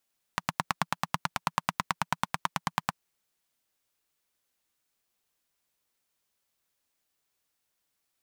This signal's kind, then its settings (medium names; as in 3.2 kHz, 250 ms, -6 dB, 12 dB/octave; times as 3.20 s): single-cylinder engine model, steady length 2.59 s, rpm 1100, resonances 170/970 Hz